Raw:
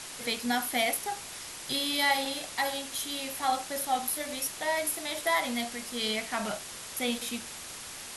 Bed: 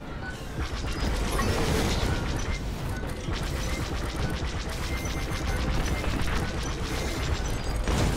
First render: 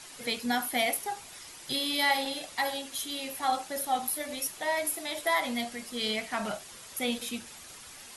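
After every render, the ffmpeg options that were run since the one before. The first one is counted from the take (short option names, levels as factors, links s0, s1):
-af "afftdn=nr=8:nf=-43"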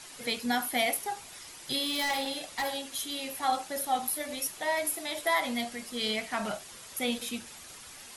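-filter_complex "[0:a]asettb=1/sr,asplit=3[s0][s1][s2];[s0]atrim=end=1.854[s3];[s1]atrim=start=1.85:end=2.79,asetpts=PTS-STARTPTS,afade=t=in:d=0.004:c=qsin,afade=t=out:st=0.936:d=0.004:c=qsin,volume=22.4,asoftclip=hard,volume=0.0447[s4];[s2]atrim=start=2.786[s5];[s3][s4]acrossfade=d=0.004:c1=hsin:c2=qsin[s6];[s6][s5]acrossfade=d=0.004:c1=qsin:c2=hsin"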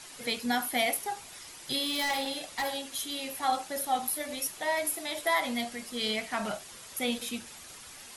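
-af anull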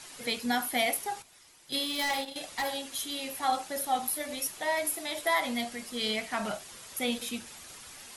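-filter_complex "[0:a]asettb=1/sr,asplit=3[s0][s1][s2];[s0]atrim=end=1.224[s3];[s1]atrim=start=1.22:end=2.36,asetpts=PTS-STARTPTS,afade=t=in:d=0.004:c=qsin,afade=t=out:st=1.136:d=0.004:c=qsin,agate=range=0.282:threshold=0.0224:ratio=16:release=100:detection=peak[s4];[s2]atrim=start=2.356[s5];[s3][s4]acrossfade=d=0.004:c1=hsin:c2=qsin[s6];[s6][s5]acrossfade=d=0.004:c1=qsin:c2=hsin"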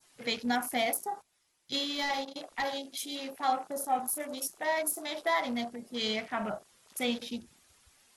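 -af "adynamicequalizer=threshold=0.00562:dfrequency=2600:dqfactor=0.84:tfrequency=2600:tqfactor=0.84:attack=5:release=100:ratio=0.375:range=3:mode=cutabove:tftype=bell,afwtdn=0.00708"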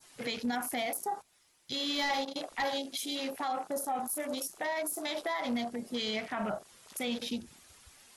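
-filter_complex "[0:a]asplit=2[s0][s1];[s1]acompressor=threshold=0.01:ratio=6,volume=1[s2];[s0][s2]amix=inputs=2:normalize=0,alimiter=level_in=1.19:limit=0.0631:level=0:latency=1:release=48,volume=0.841"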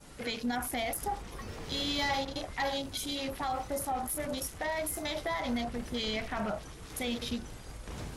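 -filter_complex "[1:a]volume=0.15[s0];[0:a][s0]amix=inputs=2:normalize=0"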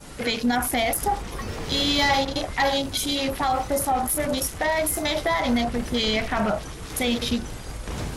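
-af "volume=3.35"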